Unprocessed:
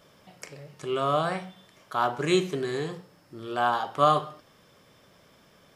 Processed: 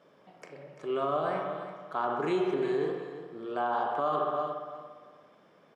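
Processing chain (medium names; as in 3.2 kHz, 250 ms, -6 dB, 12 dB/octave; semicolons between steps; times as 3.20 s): low-pass 1 kHz 6 dB/octave; feedback delay 342 ms, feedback 23%, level -13 dB; spring tank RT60 1.4 s, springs 58 ms, chirp 75 ms, DRR 4 dB; peak limiter -19.5 dBFS, peak gain reduction 9.5 dB; high-pass 250 Hz 12 dB/octave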